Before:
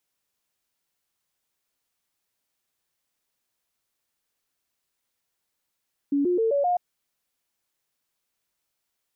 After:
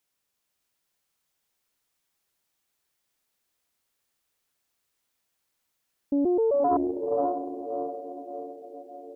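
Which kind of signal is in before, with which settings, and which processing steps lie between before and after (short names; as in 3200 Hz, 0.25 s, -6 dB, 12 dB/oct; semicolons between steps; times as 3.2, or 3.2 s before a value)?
stepped sine 283 Hz up, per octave 3, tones 5, 0.13 s, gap 0.00 s -19.5 dBFS
diffused feedback echo 0.567 s, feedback 52%, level -4 dB; Doppler distortion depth 0.28 ms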